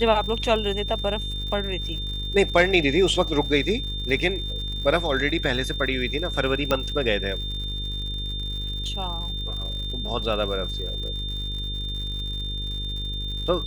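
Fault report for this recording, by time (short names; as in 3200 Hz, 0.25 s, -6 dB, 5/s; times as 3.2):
buzz 50 Hz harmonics 10 -31 dBFS
crackle 120/s -34 dBFS
tone 3600 Hz -31 dBFS
6.71 pop -8 dBFS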